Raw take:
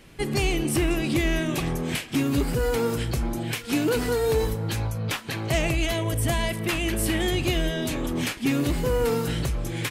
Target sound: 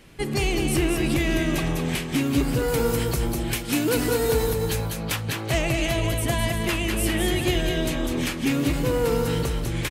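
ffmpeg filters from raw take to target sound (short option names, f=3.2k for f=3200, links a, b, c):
-filter_complex "[0:a]asettb=1/sr,asplit=3[a][b][c];[a]atrim=end=2.684[d];[b]atrim=start=2.68:end=5.16,asetpts=PTS-STARTPTS,afade=t=in:d=0.004:c=qsin,afade=t=out:st=2.476:d=0.004:c=qsin,highshelf=f=7.8k:g=8.5[e];[c]atrim=start=5.156[f];[d][e]acrossfade=d=0.004:c1=hsin:c2=qsin[g];[g][f]acrossfade=d=0.004:c1=qsin:c2=hsin,aecho=1:1:206|381:0.531|0.266"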